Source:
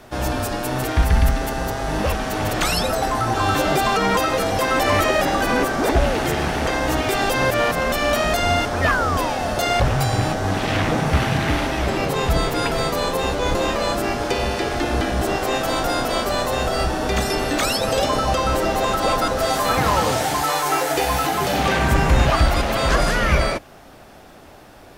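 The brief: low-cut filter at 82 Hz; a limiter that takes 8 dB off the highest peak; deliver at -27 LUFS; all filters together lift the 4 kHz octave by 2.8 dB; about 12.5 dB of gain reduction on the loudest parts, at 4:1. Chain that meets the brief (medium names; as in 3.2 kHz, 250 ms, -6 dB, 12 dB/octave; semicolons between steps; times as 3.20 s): high-pass 82 Hz; peaking EQ 4 kHz +3.5 dB; compression 4:1, threshold -30 dBFS; trim +6.5 dB; peak limiter -18.5 dBFS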